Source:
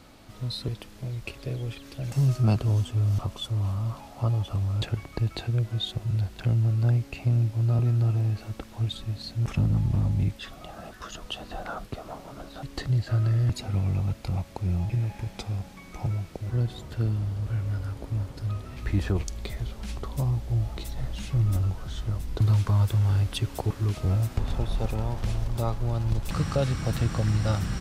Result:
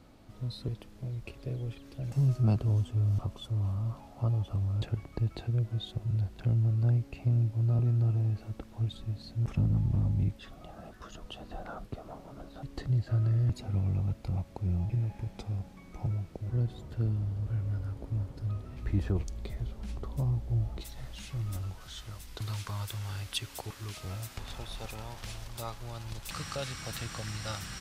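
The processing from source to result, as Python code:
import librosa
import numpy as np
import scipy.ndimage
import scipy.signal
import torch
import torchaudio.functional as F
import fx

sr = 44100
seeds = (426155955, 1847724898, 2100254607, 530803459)

y = fx.tilt_shelf(x, sr, db=fx.steps((0.0, 4.0), (20.8, -4.0), (21.8, -8.0)), hz=900.0)
y = y * 10.0 ** (-7.5 / 20.0)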